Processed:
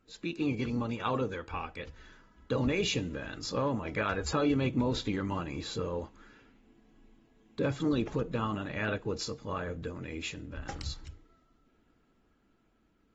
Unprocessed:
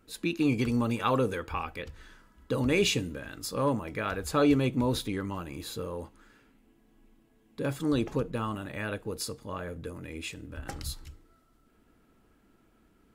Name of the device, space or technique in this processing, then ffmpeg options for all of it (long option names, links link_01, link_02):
low-bitrate web radio: -af "dynaudnorm=framelen=440:gausssize=11:maxgain=7.5dB,alimiter=limit=-15dB:level=0:latency=1:release=219,volume=-6dB" -ar 48000 -c:a aac -b:a 24k